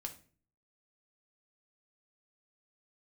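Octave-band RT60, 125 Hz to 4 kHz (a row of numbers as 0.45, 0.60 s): 0.70, 0.60, 0.50, 0.35, 0.40, 0.30 s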